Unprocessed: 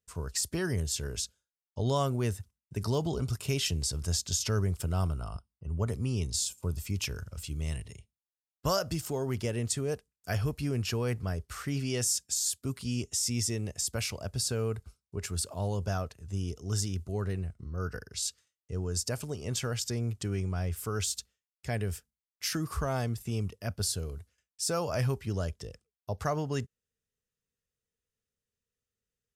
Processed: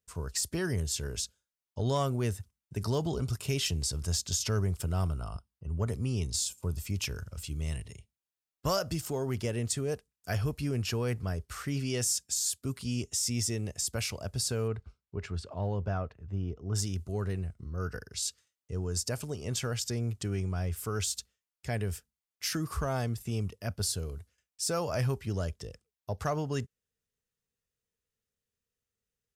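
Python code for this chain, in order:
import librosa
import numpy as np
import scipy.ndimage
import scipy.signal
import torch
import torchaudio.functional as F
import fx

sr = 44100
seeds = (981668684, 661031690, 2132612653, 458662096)

y = fx.lowpass(x, sr, hz=fx.line((14.67, 3800.0), (16.74, 1600.0)), slope=12, at=(14.67, 16.74), fade=0.02)
y = 10.0 ** (-17.5 / 20.0) * np.tanh(y / 10.0 ** (-17.5 / 20.0))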